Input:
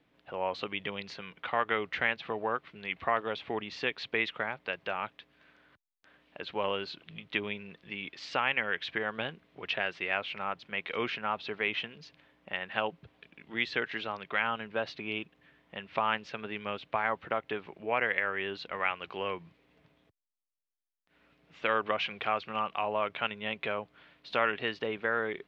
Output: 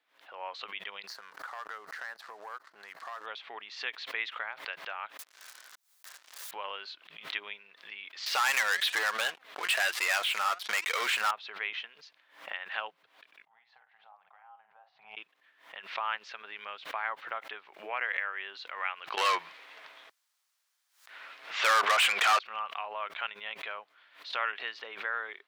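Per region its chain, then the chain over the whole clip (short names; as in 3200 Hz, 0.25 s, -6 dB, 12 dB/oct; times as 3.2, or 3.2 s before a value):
1.07–3.26 band shelf 2800 Hz -14 dB 1 oct + sample leveller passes 2 + compressor 3:1, threshold -37 dBFS
5.17–6.51 steep high-pass 200 Hz 72 dB/oct + sample leveller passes 5 + wrapped overs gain 37 dB
8.26–11.31 sample leveller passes 5 + flange 1.1 Hz, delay 1.4 ms, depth 4.6 ms, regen +71%
13.45–15.17 compressor 10:1, threshold -33 dBFS + double band-pass 330 Hz, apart 2.5 oct + doubler 47 ms -8.5 dB
19.17–22.39 low shelf 180 Hz +6.5 dB + overdrive pedal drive 31 dB, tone 4200 Hz, clips at -11.5 dBFS
whole clip: HPF 1100 Hz 12 dB/oct; bell 2600 Hz -4.5 dB 0.89 oct; backwards sustainer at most 120 dB/s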